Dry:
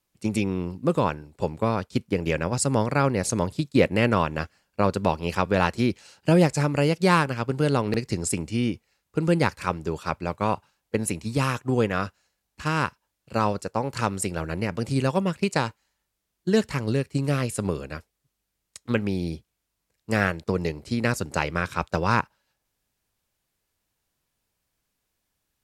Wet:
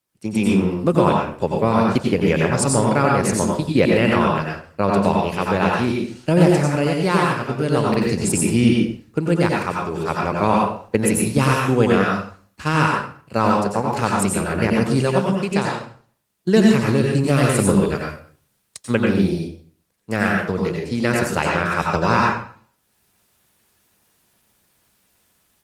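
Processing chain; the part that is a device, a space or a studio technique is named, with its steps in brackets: far-field microphone of a smart speaker (reverb RT60 0.45 s, pre-delay 84 ms, DRR -1.5 dB; HPF 86 Hz 12 dB/oct; AGC gain up to 15 dB; gain -1 dB; Opus 24 kbps 48000 Hz)

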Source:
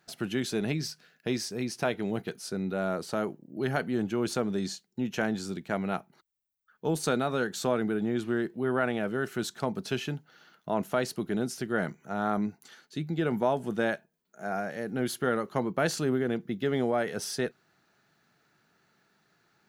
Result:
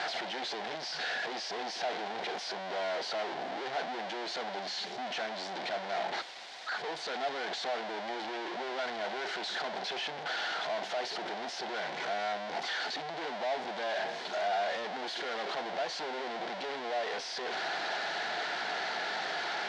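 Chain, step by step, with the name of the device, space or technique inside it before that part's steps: home computer beeper (infinite clipping; speaker cabinet 600–4400 Hz, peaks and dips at 730 Hz +8 dB, 1200 Hz -8 dB, 2600 Hz -5 dB)

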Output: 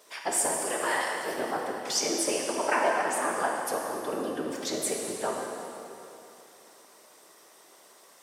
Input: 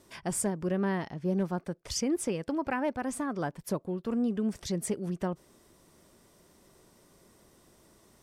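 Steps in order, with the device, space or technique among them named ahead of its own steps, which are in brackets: 0.61–1.39 RIAA curve recording; whispering ghost (whisperiser; HPF 590 Hz 12 dB/oct; reverb RT60 3.0 s, pre-delay 3 ms, DRR -1 dB); gain +5.5 dB

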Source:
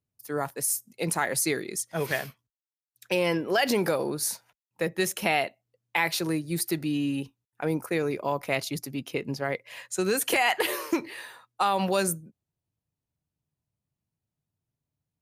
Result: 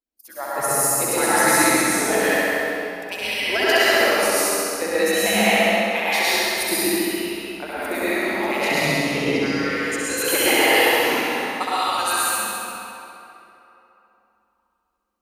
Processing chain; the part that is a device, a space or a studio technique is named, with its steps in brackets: median-filter separation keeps percussive; 8.7–9.4 LPF 7200 Hz 12 dB/oct; tunnel (flutter echo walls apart 11.4 m, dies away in 1.4 s; reverb RT60 3.1 s, pre-delay 97 ms, DRR -9.5 dB)

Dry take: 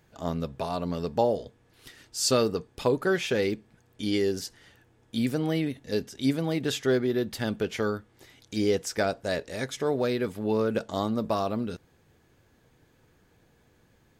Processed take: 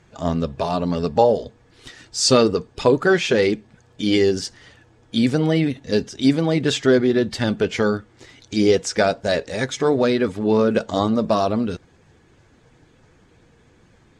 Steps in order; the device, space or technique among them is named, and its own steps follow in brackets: clip after many re-uploads (LPF 8300 Hz 24 dB/oct; bin magnitudes rounded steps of 15 dB); gain +9 dB

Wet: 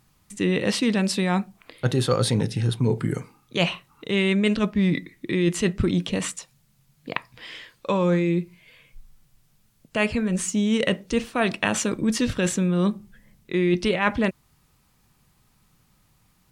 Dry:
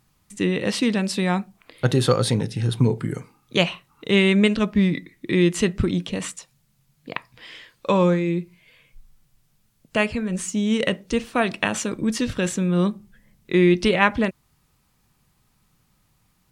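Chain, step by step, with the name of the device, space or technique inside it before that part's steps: compression on the reversed sound (reverse; compressor 10:1, threshold -19 dBFS, peak gain reduction 9 dB; reverse); gain +2 dB

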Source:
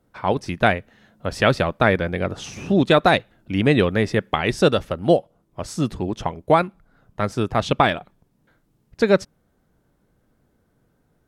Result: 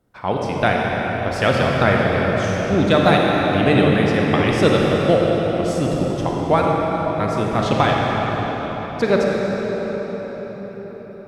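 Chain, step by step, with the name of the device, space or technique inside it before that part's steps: cathedral (reverb RT60 5.8 s, pre-delay 35 ms, DRR -2.5 dB); gain -1.5 dB

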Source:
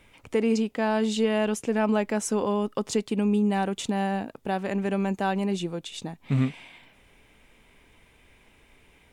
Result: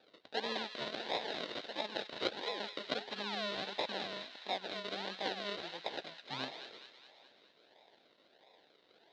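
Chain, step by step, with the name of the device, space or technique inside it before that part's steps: 0.89–2.6 resonant low shelf 660 Hz -9.5 dB, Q 1.5; passive tone stack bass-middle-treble 5-5-5; notches 60/120/180/240/300/360/420 Hz; circuit-bent sampling toy (decimation with a swept rate 42×, swing 60% 1.5 Hz; speaker cabinet 570–4400 Hz, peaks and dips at 1200 Hz -10 dB, 2300 Hz -4 dB, 3900 Hz +10 dB); thin delay 0.209 s, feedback 57%, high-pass 1500 Hz, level -8 dB; gain +10.5 dB

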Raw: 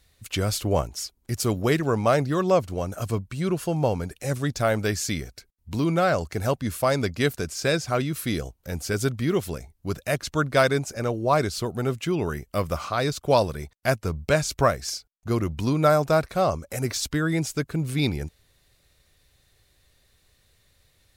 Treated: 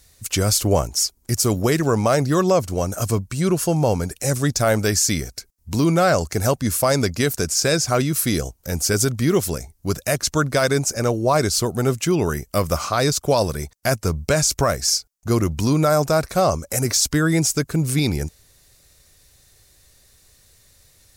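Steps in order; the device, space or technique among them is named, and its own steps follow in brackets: over-bright horn tweeter (resonant high shelf 4500 Hz +6.5 dB, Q 1.5; limiter -14 dBFS, peak gain reduction 8.5 dB); gain +6 dB

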